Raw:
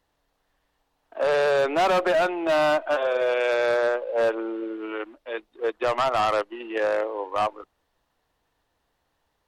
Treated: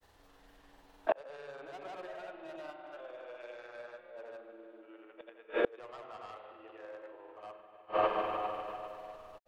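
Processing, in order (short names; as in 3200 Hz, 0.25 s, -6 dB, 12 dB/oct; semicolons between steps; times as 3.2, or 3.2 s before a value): spring tank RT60 3 s, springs 30/42/49 ms, chirp 40 ms, DRR 2.5 dB; grains 0.1 s, grains 20/s, pitch spread up and down by 0 st; flipped gate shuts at -25 dBFS, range -35 dB; gain +10 dB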